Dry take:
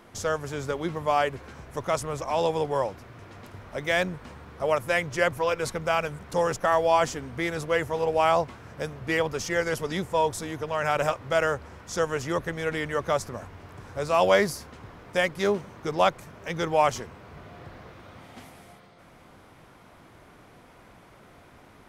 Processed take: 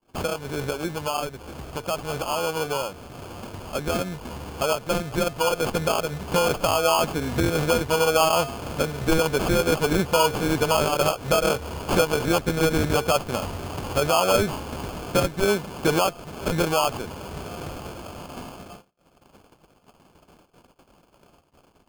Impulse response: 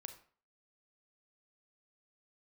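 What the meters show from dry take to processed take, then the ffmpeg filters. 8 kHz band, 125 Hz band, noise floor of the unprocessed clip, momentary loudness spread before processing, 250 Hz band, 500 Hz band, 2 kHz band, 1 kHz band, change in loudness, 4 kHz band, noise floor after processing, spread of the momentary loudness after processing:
+8.0 dB, +6.5 dB, -53 dBFS, 19 LU, +7.0 dB, +2.5 dB, +0.5 dB, +1.5 dB, +3.0 dB, +7.5 dB, -60 dBFS, 15 LU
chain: -filter_complex "[0:a]equalizer=f=110:t=o:w=0.25:g=-11.5,asplit=2[s0][s1];[s1]acompressor=threshold=0.0316:ratio=6,volume=1.26[s2];[s0][s2]amix=inputs=2:normalize=0,bandreject=f=228.2:t=h:w=4,bandreject=f=456.4:t=h:w=4,bandreject=f=684.6:t=h:w=4,acrusher=samples=23:mix=1:aa=0.000001,alimiter=limit=0.126:level=0:latency=1:release=356,agate=range=0.01:threshold=0.00708:ratio=16:detection=peak,dynaudnorm=f=490:g=21:m=2.24"

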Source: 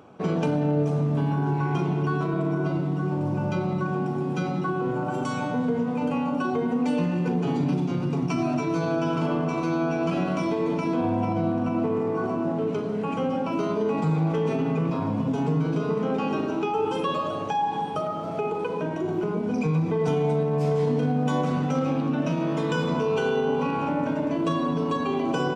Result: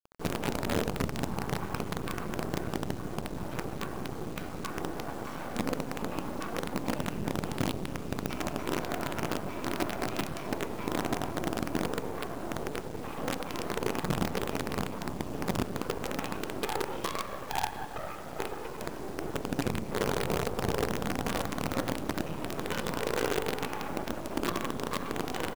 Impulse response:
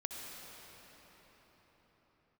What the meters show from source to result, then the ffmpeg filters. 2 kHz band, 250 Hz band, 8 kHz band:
-2.5 dB, -10.5 dB, no reading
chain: -filter_complex "[0:a]bass=f=250:g=-2,treble=f=4000:g=-5,areverse,acompressor=mode=upward:threshold=0.0158:ratio=2.5,areverse,asplit=2[s0][s1];[s1]adelay=240,highpass=300,lowpass=3400,asoftclip=type=hard:threshold=0.0668,volume=0.0398[s2];[s0][s2]amix=inputs=2:normalize=0,afftfilt=real='hypot(re,im)*cos(2*PI*random(0))':imag='hypot(re,im)*sin(2*PI*random(1))':win_size=512:overlap=0.75,asplit=2[s3][s4];[s4]aecho=0:1:540|1080|1620|2160:0.0708|0.0382|0.0206|0.0111[s5];[s3][s5]amix=inputs=2:normalize=0,acrusher=bits=5:dc=4:mix=0:aa=0.000001"

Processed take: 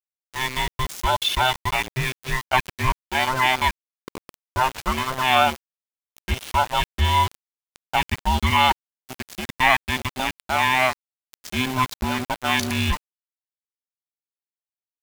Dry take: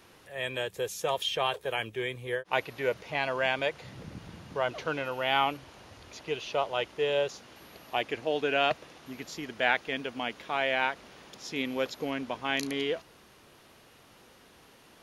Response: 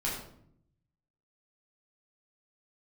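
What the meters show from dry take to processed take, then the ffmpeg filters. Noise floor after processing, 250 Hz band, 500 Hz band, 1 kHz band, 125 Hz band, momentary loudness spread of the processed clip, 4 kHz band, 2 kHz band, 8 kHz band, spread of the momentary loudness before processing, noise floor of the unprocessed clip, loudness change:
under -85 dBFS, +7.5 dB, -0.5 dB, +12.0 dB, +17.0 dB, 12 LU, +9.0 dB, +8.5 dB, +12.0 dB, 17 LU, -57 dBFS, +8.5 dB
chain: -af "afftfilt=real='real(if(between(b,1,1008),(2*floor((b-1)/24)+1)*24-b,b),0)':imag='imag(if(between(b,1,1008),(2*floor((b-1)/24)+1)*24-b,b),0)*if(between(b,1,1008),-1,1)':win_size=2048:overlap=0.75,aeval=exprs='val(0)*gte(abs(val(0)),0.0188)':c=same,volume=2.82"

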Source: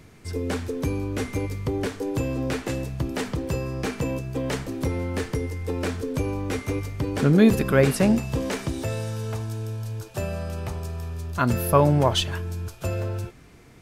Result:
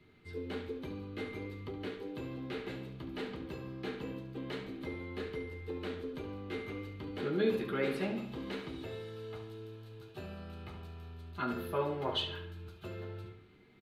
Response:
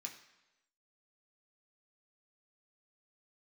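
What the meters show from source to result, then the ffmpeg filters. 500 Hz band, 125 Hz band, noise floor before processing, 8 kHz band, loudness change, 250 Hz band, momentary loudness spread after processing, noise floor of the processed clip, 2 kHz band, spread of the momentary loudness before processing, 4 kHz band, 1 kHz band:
-12.0 dB, -19.0 dB, -49 dBFS, under -25 dB, -14.0 dB, -15.0 dB, 13 LU, -57 dBFS, -11.5 dB, 12 LU, -9.5 dB, -14.0 dB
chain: -filter_complex "[0:a]firequalizer=gain_entry='entry(3800,0);entry(5500,-15);entry(8900,-17)':delay=0.05:min_phase=1,asplit=2[s0][s1];[s1]adelay=70,lowpass=f=5000:p=1,volume=0.398,asplit=2[s2][s3];[s3]adelay=70,lowpass=f=5000:p=1,volume=0.49,asplit=2[s4][s5];[s5]adelay=70,lowpass=f=5000:p=1,volume=0.49,asplit=2[s6][s7];[s7]adelay=70,lowpass=f=5000:p=1,volume=0.49,asplit=2[s8][s9];[s9]adelay=70,lowpass=f=5000:p=1,volume=0.49,asplit=2[s10][s11];[s11]adelay=70,lowpass=f=5000:p=1,volume=0.49[s12];[s0][s2][s4][s6][s8][s10][s12]amix=inputs=7:normalize=0[s13];[1:a]atrim=start_sample=2205,atrim=end_sample=3969,asetrate=74970,aresample=44100[s14];[s13][s14]afir=irnorm=-1:irlink=0,acrossover=split=240[s15][s16];[s15]alimiter=level_in=6.68:limit=0.0631:level=0:latency=1,volume=0.15[s17];[s17][s16]amix=inputs=2:normalize=0,volume=0.841"

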